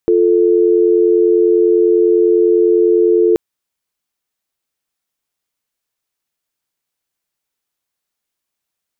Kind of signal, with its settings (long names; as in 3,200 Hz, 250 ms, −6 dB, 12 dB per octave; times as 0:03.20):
call progress tone dial tone, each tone −11 dBFS 3.28 s